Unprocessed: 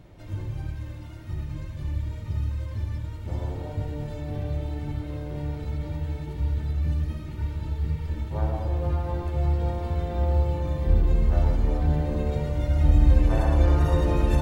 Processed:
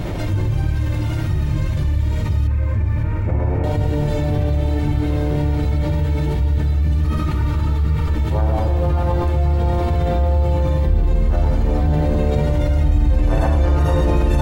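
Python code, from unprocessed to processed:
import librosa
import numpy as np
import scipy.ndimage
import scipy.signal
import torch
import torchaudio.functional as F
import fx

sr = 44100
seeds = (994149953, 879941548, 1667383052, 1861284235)

y = fx.cheby1_lowpass(x, sr, hz=2500.0, order=5, at=(2.47, 3.64))
y = fx.peak_eq(y, sr, hz=1200.0, db=10.5, octaves=0.39, at=(7.03, 8.17))
y = fx.echo_feedback(y, sr, ms=559, feedback_pct=59, wet_db=-13.5)
y = fx.env_flatten(y, sr, amount_pct=70)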